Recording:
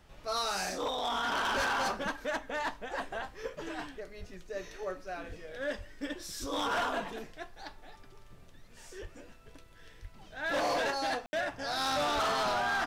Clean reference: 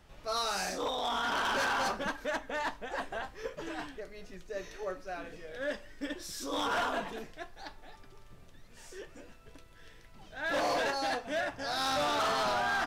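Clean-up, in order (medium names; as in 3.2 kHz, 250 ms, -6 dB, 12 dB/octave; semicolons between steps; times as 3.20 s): de-plosive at 1.56/4.19/5.28/5.77/6.40/9.01/10.01/12.14 s; room tone fill 11.26–11.33 s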